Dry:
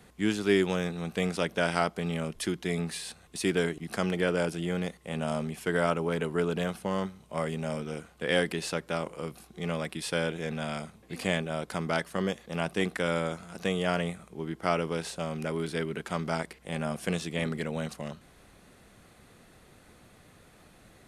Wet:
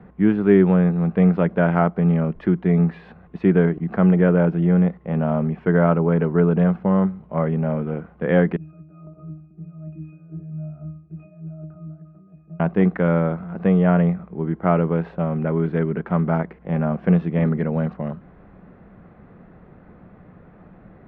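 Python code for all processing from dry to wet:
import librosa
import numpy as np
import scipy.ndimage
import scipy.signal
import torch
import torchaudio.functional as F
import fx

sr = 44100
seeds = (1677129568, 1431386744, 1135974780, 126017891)

y = fx.chain(x, sr, fx.high_shelf(hz=8400.0, db=-4.0),
    fx.over_compress(threshold_db=-38.0, ratio=-1.0),
    fx.octave_resonator(note='D#', decay_s=0.45), at=(8.56, 12.6))
y = scipy.signal.sosfilt(scipy.signal.bessel(4, 1200.0, 'lowpass', norm='mag', fs=sr, output='sos'), y)
y = fx.peak_eq(y, sr, hz=180.0, db=8.0, octaves=0.43)
y = y * librosa.db_to_amplitude(9.0)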